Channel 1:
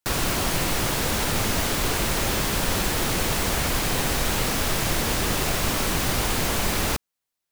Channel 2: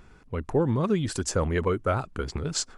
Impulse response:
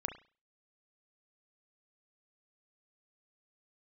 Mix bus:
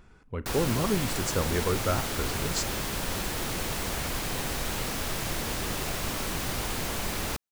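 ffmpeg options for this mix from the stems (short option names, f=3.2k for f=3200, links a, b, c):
-filter_complex "[0:a]adelay=400,volume=-7.5dB[a];[1:a]volume=-5.5dB,asplit=2[b][c];[c]volume=-9.5dB[d];[2:a]atrim=start_sample=2205[e];[d][e]afir=irnorm=-1:irlink=0[f];[a][b][f]amix=inputs=3:normalize=0"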